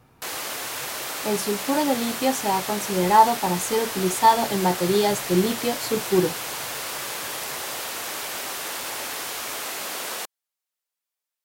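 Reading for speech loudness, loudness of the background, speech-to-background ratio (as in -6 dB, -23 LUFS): -22.5 LUFS, -29.0 LUFS, 6.5 dB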